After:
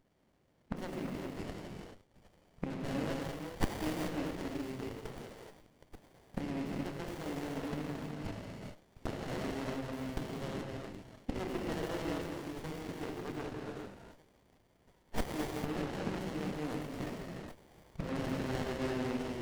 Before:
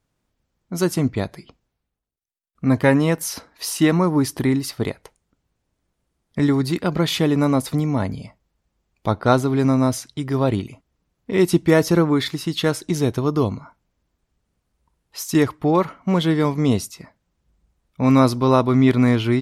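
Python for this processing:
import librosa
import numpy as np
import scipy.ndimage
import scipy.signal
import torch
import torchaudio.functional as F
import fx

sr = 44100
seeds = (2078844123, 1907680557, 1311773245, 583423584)

y = fx.self_delay(x, sr, depth_ms=0.74)
y = fx.gate_flip(y, sr, shuts_db=-21.0, range_db=-24)
y = fx.highpass(y, sr, hz=330.0, slope=6)
y = fx.peak_eq(y, sr, hz=2400.0, db=13.5, octaves=0.32)
y = fx.echo_stepped(y, sr, ms=770, hz=4200.0, octaves=0.7, feedback_pct=70, wet_db=-11)
y = fx.rev_gated(y, sr, seeds[0], gate_ms=460, shape='flat', drr_db=-2.5)
y = fx.running_max(y, sr, window=33)
y = y * 10.0 ** (5.0 / 20.0)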